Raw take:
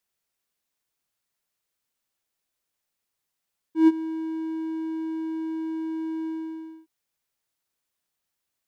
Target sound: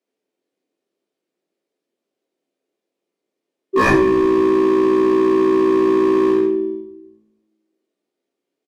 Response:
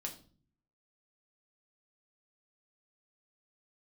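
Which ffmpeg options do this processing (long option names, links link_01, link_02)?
-filter_complex "[0:a]highpass=frequency=250:width=0.5412,highpass=frequency=250:width=1.3066,aemphasis=mode=reproduction:type=75fm,bandreject=frequency=1600:width=18,asplit=3[link_01][link_02][link_03];[link_02]asetrate=29433,aresample=44100,atempo=1.49831,volume=-15dB[link_04];[link_03]asetrate=52444,aresample=44100,atempo=0.840896,volume=0dB[link_05];[link_01][link_04][link_05]amix=inputs=3:normalize=0,asoftclip=type=tanh:threshold=-13.5dB,lowshelf=frequency=660:width_type=q:width=1.5:gain=13.5,acrossover=split=730[link_06][link_07];[link_06]aeval=exprs='0.376*(abs(mod(val(0)/0.376+3,4)-2)-1)':channel_layout=same[link_08];[link_08][link_07]amix=inputs=2:normalize=0,asplit=2[link_09][link_10];[link_10]adelay=23,volume=-11dB[link_11];[link_09][link_11]amix=inputs=2:normalize=0[link_12];[1:a]atrim=start_sample=2205,asetrate=27342,aresample=44100[link_13];[link_12][link_13]afir=irnorm=-1:irlink=0,volume=-1.5dB"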